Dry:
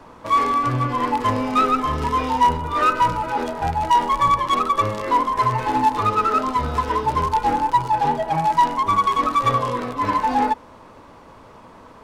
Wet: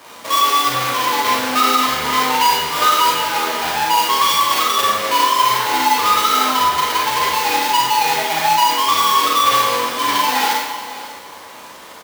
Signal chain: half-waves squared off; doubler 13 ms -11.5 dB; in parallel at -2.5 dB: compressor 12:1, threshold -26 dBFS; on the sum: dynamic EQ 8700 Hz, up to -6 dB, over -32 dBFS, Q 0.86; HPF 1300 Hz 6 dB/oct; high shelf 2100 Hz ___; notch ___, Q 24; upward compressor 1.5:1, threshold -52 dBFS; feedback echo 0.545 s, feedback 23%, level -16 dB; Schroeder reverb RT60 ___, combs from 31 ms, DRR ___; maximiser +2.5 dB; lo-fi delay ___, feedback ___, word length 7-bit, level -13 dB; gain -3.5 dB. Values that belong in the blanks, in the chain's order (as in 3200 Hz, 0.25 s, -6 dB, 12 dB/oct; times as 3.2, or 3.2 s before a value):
-2 dB, 2600 Hz, 0.77 s, -3.5 dB, 0.166 s, 55%